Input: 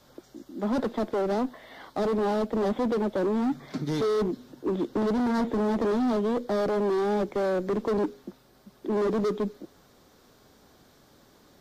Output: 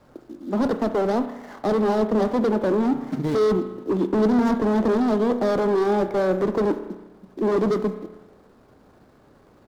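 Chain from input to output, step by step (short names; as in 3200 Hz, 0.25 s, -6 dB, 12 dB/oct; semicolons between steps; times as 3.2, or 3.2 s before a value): median filter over 15 samples; spring tank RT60 1.3 s, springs 37 ms, chirp 60 ms, DRR 9 dB; tempo 1.2×; gain +5 dB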